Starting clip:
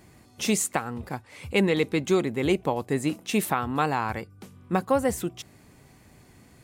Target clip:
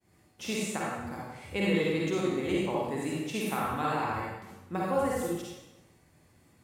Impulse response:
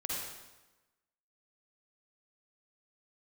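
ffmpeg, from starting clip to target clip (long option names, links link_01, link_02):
-filter_complex "[0:a]agate=range=-33dB:threshold=-49dB:ratio=3:detection=peak,acrossover=split=4900[link_01][link_02];[link_02]alimiter=level_in=5dB:limit=-24dB:level=0:latency=1,volume=-5dB[link_03];[link_01][link_03]amix=inputs=2:normalize=0,lowshelf=frequency=73:gain=-5[link_04];[1:a]atrim=start_sample=2205,asetrate=48510,aresample=44100[link_05];[link_04][link_05]afir=irnorm=-1:irlink=0,volume=-6.5dB"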